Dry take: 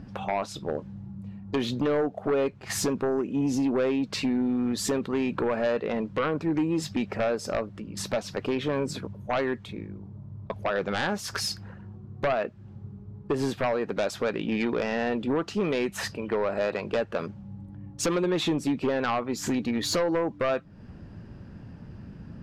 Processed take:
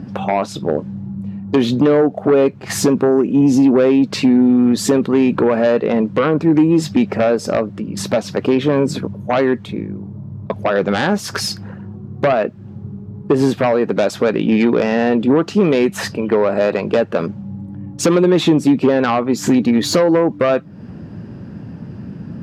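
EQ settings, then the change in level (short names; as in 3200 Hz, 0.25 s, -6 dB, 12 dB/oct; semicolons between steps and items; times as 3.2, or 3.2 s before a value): HPF 140 Hz 12 dB/oct; low shelf 490 Hz +8.5 dB; +8.0 dB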